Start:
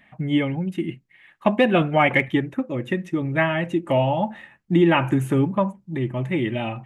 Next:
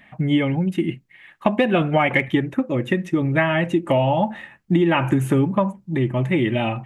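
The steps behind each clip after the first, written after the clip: compressor, threshold -19 dBFS, peak gain reduction 7.5 dB; gain +5 dB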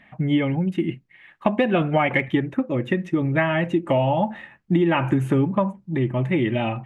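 high shelf 6400 Hz -12 dB; gain -1.5 dB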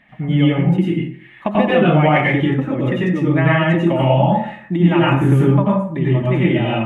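plate-style reverb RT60 0.52 s, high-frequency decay 0.7×, pre-delay 80 ms, DRR -5.5 dB; gain -1 dB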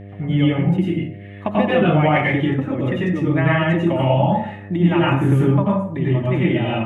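buzz 100 Hz, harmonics 7, -34 dBFS -6 dB/oct; gain -2.5 dB

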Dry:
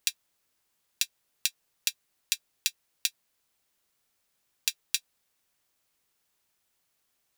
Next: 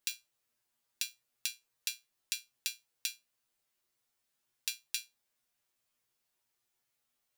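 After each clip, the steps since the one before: resonator 120 Hz, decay 0.2 s, harmonics all, mix 90%; gain +1 dB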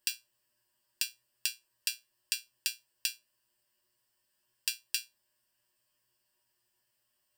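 ripple EQ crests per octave 1.3, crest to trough 11 dB; gain +2.5 dB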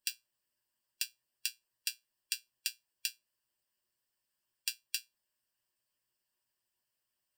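harmonic-percussive split harmonic -9 dB; gain -3 dB

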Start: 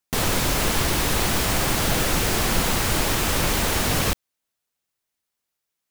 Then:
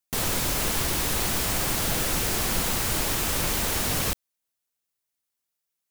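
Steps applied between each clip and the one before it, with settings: high shelf 5800 Hz +6.5 dB; gain -6 dB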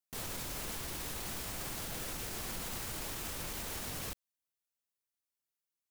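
limiter -22 dBFS, peak gain reduction 9 dB; gain -9 dB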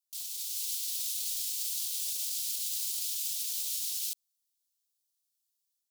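inverse Chebyshev high-pass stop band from 1400 Hz, stop band 50 dB; AGC gain up to 5.5 dB; gain +4 dB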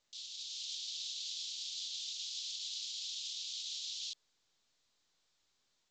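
band-pass 3400 Hz, Q 2.3; frequency shift +120 Hz; gain +3.5 dB; µ-law 128 kbps 16000 Hz

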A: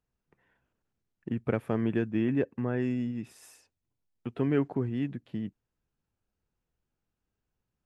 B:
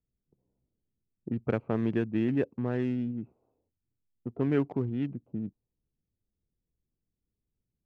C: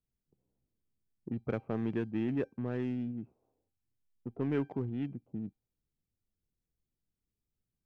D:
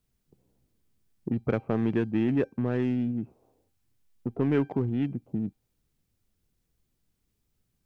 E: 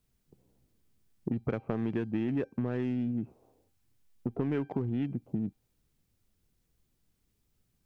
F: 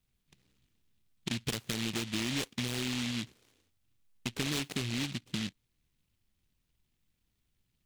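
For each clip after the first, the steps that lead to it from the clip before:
Wiener smoothing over 25 samples; low-pass opened by the level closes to 410 Hz, open at -23 dBFS
resonator 790 Hz, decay 0.32 s, mix 60%; in parallel at -5 dB: soft clip -33.5 dBFS, distortion -11 dB
in parallel at +1.5 dB: compressor, threshold -42 dBFS, peak gain reduction 14 dB; on the sum: short-mantissa float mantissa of 8-bit; gain +5 dB
compressor 5:1, threshold -29 dBFS, peak gain reduction 8.5 dB; gain +1 dB
noise-modulated delay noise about 2900 Hz, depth 0.42 ms; gain -3 dB

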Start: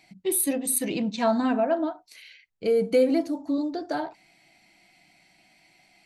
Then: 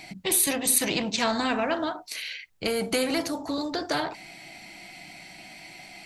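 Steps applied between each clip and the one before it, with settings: spectral compressor 2:1; gain +2 dB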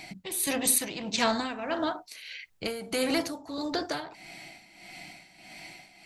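tremolo 1.6 Hz, depth 73%

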